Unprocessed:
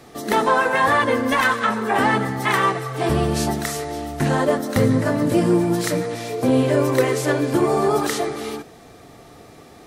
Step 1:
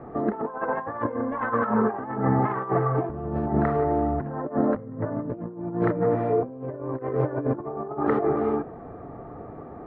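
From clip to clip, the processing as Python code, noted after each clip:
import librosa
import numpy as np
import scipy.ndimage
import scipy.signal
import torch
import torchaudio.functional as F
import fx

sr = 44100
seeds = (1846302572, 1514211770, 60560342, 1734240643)

y = scipy.signal.sosfilt(scipy.signal.butter(4, 1300.0, 'lowpass', fs=sr, output='sos'), x)
y = fx.over_compress(y, sr, threshold_db=-25.0, ratio=-0.5)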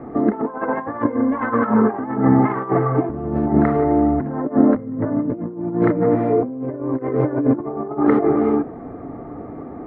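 y = fx.small_body(x, sr, hz=(270.0, 2100.0), ring_ms=30, db=9)
y = y * librosa.db_to_amplitude(3.5)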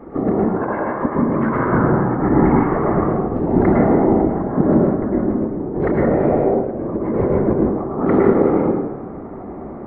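y = fx.whisperise(x, sr, seeds[0])
y = fx.rev_plate(y, sr, seeds[1], rt60_s=0.99, hf_ratio=0.55, predelay_ms=95, drr_db=-2.5)
y = y * librosa.db_to_amplitude(-3.0)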